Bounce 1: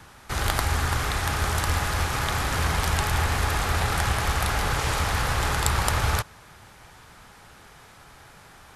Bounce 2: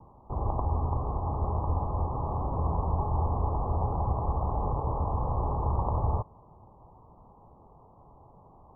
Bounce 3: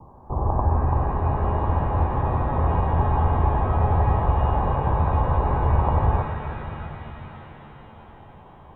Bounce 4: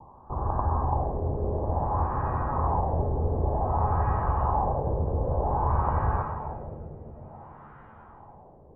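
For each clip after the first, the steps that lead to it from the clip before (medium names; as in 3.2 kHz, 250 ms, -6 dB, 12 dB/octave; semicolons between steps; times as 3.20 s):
steep low-pass 1.1 kHz 96 dB/octave; trim -2.5 dB
pitch-shifted reverb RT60 3.9 s, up +7 st, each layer -8 dB, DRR 5 dB; trim +6.5 dB
LFO low-pass sine 0.54 Hz 470–1500 Hz; trim -6.5 dB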